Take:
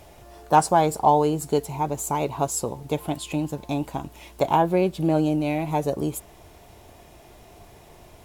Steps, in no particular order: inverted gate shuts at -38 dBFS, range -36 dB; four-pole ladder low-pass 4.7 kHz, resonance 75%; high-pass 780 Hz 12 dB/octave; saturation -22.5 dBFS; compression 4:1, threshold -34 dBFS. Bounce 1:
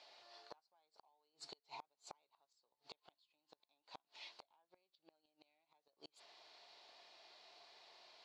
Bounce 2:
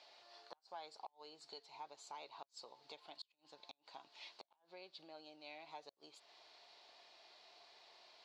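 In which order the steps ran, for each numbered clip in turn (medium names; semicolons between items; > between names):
four-pole ladder low-pass > compression > saturation > high-pass > inverted gate; compression > high-pass > saturation > four-pole ladder low-pass > inverted gate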